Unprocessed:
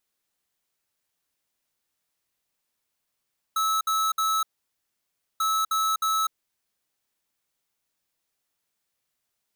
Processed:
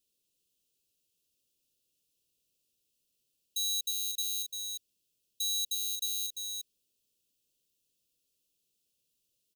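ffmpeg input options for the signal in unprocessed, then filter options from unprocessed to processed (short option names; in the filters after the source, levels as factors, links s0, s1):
-f lavfi -i "aevalsrc='0.0631*(2*lt(mod(1300*t,1),0.5)-1)*clip(min(mod(mod(t,1.84),0.31),0.25-mod(mod(t,1.84),0.31))/0.005,0,1)*lt(mod(t,1.84),0.93)':d=3.68:s=44100"
-filter_complex "[0:a]asuperstop=centerf=1200:order=20:qfactor=0.6,asplit=2[s0][s1];[s1]aecho=0:1:345:0.473[s2];[s0][s2]amix=inputs=2:normalize=0"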